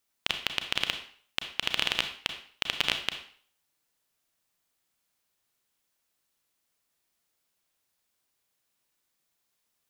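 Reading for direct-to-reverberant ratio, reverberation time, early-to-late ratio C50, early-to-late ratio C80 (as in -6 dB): 6.5 dB, 0.50 s, 9.0 dB, 12.0 dB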